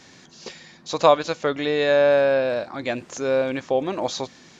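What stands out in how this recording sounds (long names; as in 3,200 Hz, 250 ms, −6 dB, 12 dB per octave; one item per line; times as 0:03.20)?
background noise floor −50 dBFS
spectral slope −4.5 dB per octave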